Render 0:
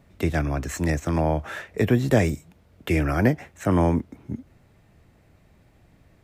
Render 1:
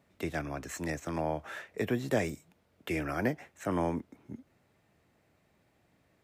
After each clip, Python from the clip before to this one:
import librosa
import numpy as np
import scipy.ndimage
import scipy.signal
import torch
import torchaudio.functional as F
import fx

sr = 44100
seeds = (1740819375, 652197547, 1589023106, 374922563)

y = fx.highpass(x, sr, hz=270.0, slope=6)
y = y * librosa.db_to_amplitude(-7.5)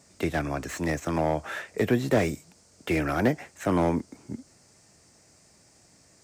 y = fx.dmg_noise_band(x, sr, seeds[0], low_hz=4500.0, high_hz=8800.0, level_db=-69.0)
y = fx.slew_limit(y, sr, full_power_hz=39.0)
y = y * librosa.db_to_amplitude(7.5)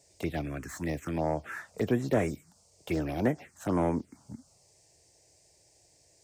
y = fx.env_phaser(x, sr, low_hz=210.0, high_hz=4600.0, full_db=-19.0)
y = y * librosa.db_to_amplitude(-3.5)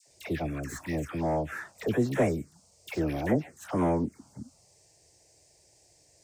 y = fx.dispersion(x, sr, late='lows', ms=76.0, hz=1000.0)
y = y * librosa.db_to_amplitude(1.5)